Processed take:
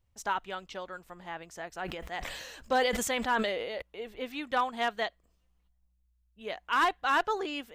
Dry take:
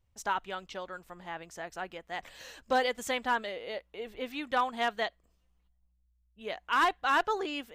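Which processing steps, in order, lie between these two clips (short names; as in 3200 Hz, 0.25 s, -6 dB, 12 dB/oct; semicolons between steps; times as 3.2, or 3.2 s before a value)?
1.74–3.82 sustainer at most 33 dB/s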